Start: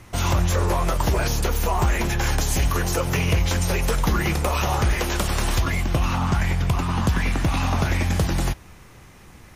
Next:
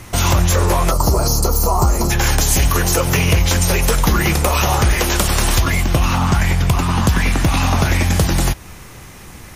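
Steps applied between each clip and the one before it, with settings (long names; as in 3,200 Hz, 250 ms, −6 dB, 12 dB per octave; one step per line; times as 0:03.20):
gain on a spectral selection 0:00.91–0:02.11, 1,400–4,000 Hz −16 dB
high-shelf EQ 5,200 Hz +6.5 dB
in parallel at −2.5 dB: downward compressor, threshold −27 dBFS, peak gain reduction 11 dB
on the sum: level +4 dB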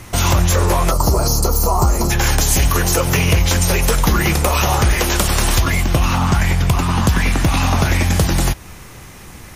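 no processing that can be heard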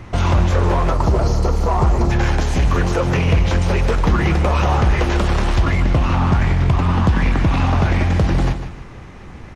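in parallel at −11.5 dB: wrap-around overflow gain 11.5 dB
on the sum: head-to-tape spacing loss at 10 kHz 27 dB
repeating echo 152 ms, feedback 36%, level −10.5 dB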